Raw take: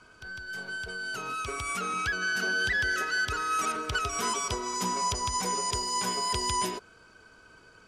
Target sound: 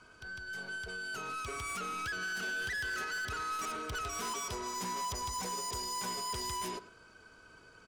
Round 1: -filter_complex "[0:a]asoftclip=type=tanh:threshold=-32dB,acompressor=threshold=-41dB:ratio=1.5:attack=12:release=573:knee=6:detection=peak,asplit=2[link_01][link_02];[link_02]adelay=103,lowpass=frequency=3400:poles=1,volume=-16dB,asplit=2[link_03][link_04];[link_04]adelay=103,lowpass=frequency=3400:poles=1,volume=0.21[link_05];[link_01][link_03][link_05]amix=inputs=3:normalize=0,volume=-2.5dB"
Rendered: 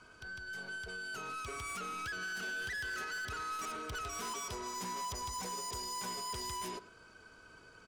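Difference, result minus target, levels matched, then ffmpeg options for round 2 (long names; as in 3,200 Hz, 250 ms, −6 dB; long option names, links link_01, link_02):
downward compressor: peak gain reduction +3 dB
-filter_complex "[0:a]asoftclip=type=tanh:threshold=-32dB,asplit=2[link_01][link_02];[link_02]adelay=103,lowpass=frequency=3400:poles=1,volume=-16dB,asplit=2[link_03][link_04];[link_04]adelay=103,lowpass=frequency=3400:poles=1,volume=0.21[link_05];[link_01][link_03][link_05]amix=inputs=3:normalize=0,volume=-2.5dB"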